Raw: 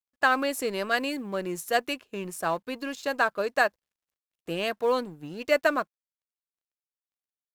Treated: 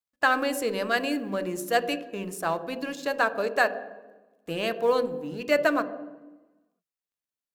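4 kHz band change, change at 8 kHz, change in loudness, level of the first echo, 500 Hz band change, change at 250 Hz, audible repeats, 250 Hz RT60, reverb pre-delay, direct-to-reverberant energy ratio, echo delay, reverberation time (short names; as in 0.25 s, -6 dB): 0.0 dB, 0.0 dB, +1.0 dB, none, +1.5 dB, +2.5 dB, none, 1.6 s, 4 ms, 10.0 dB, none, 1.2 s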